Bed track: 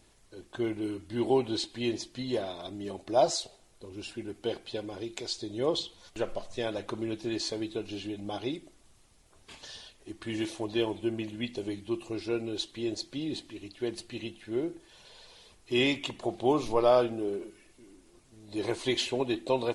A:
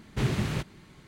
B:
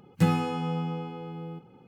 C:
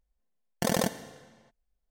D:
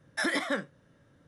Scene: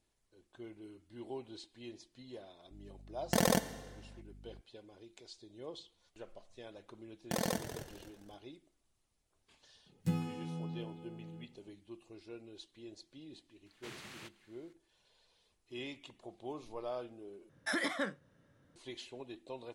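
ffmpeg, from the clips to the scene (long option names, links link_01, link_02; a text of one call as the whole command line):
ffmpeg -i bed.wav -i cue0.wav -i cue1.wav -i cue2.wav -i cue3.wav -filter_complex "[3:a]asplit=2[link_01][link_02];[0:a]volume=-18dB[link_03];[link_01]aeval=exprs='val(0)+0.00282*(sin(2*PI*50*n/s)+sin(2*PI*2*50*n/s)/2+sin(2*PI*3*50*n/s)/3+sin(2*PI*4*50*n/s)/4+sin(2*PI*5*50*n/s)/5)':channel_layout=same[link_04];[link_02]asplit=4[link_05][link_06][link_07][link_08];[link_06]adelay=260,afreqshift=-79,volume=-10.5dB[link_09];[link_07]adelay=520,afreqshift=-158,volume=-20.4dB[link_10];[link_08]adelay=780,afreqshift=-237,volume=-30.3dB[link_11];[link_05][link_09][link_10][link_11]amix=inputs=4:normalize=0[link_12];[2:a]equalizer=frequency=1200:width=0.43:gain=-9.5[link_13];[1:a]highpass=frequency=1300:poles=1[link_14];[link_03]asplit=2[link_15][link_16];[link_15]atrim=end=17.494[link_17];[4:a]atrim=end=1.27,asetpts=PTS-STARTPTS,volume=-5.5dB[link_18];[link_16]atrim=start=18.756[link_19];[link_04]atrim=end=1.9,asetpts=PTS-STARTPTS,volume=-2dB,afade=type=in:duration=0.004:curve=hsin,afade=type=out:start_time=1.896:duration=0.004:curve=hsin,adelay=2710[link_20];[link_12]atrim=end=1.9,asetpts=PTS-STARTPTS,volume=-8dB,afade=type=in:duration=0.004:curve=hsin,afade=type=out:start_time=1.896:duration=0.004:curve=hsin,adelay=6690[link_21];[link_13]atrim=end=1.87,asetpts=PTS-STARTPTS,volume=-9.5dB,afade=type=in:duration=0.004:curve=hsin,afade=type=out:start_time=1.866:duration=0.004:curve=hsin,adelay=434826S[link_22];[link_14]atrim=end=1.07,asetpts=PTS-STARTPTS,volume=-11.5dB,afade=type=in:duration=0.004:curve=hsin,afade=type=out:start_time=1.066:duration=0.004:curve=hsin,adelay=13660[link_23];[link_17][link_18]acrossfade=duration=0.004:curve1=hsin:curve2=hsin[link_24];[link_24][link_19]acrossfade=duration=0.004:curve1=hsin:curve2=hsin[link_25];[link_25][link_20][link_21][link_22][link_23]amix=inputs=5:normalize=0" out.wav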